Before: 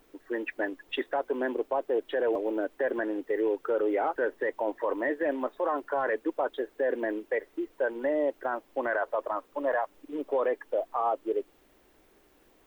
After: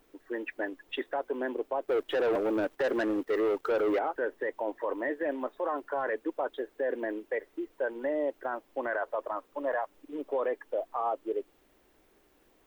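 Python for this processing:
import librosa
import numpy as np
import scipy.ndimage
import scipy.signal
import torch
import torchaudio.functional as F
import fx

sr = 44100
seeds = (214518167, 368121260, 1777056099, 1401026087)

y = fx.leveller(x, sr, passes=2, at=(1.85, 3.99))
y = F.gain(torch.from_numpy(y), -3.0).numpy()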